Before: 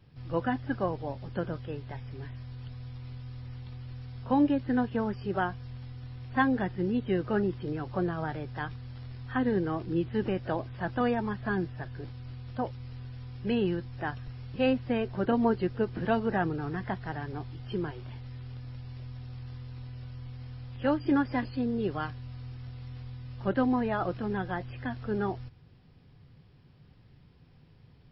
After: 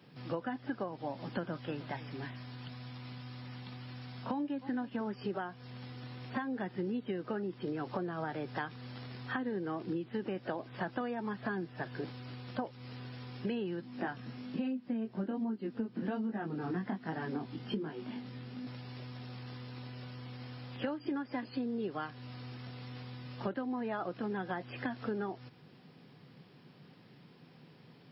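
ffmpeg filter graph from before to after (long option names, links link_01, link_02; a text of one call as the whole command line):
ffmpeg -i in.wav -filter_complex "[0:a]asettb=1/sr,asplit=3[link_01][link_02][link_03];[link_01]atrim=end=0.884[link_04];[link_02]atrim=start=0.88:end=5.01,asetpts=PTS-STARTPTS,afade=type=in:duration=0.004:curve=qsin,afade=type=out:start_time=4.126:duration=0.004:curve=qsin,equalizer=frequency=440:width_type=o:width=0.41:gain=-8,aecho=1:1:308:0.0944,atrim=end_sample=182133[link_05];[link_03]atrim=start=5.006[link_06];[link_04][link_05]acrossfade=duration=0.004:curve1=hsin:curve2=qsin[link_07];[link_07][link_06]acrossfade=duration=0.004:curve1=qsin:curve2=hsin,asettb=1/sr,asplit=3[link_08][link_09][link_10];[link_08]atrim=end=13.814[link_11];[link_09]atrim=start=13.81:end=18.67,asetpts=PTS-STARTPTS,afade=type=in:duration=0.004:curve=qsin,afade=type=out:start_time=4.856:duration=0.004:curve=qsin,equalizer=frequency=230:width_type=o:width=0.72:gain=12.5,flanger=delay=18.5:depth=4:speed=1.2[link_12];[link_10]atrim=start=18.666[link_13];[link_11][link_12]acrossfade=duration=0.004:curve1=hsin:curve2=qsin[link_14];[link_14][link_13]acrossfade=duration=0.004:curve1=qsin:curve2=hsin,highpass=frequency=170:width=0.5412,highpass=frequency=170:width=1.3066,alimiter=limit=-21dB:level=0:latency=1:release=491,acompressor=threshold=-39dB:ratio=10,volume=6dB" out.wav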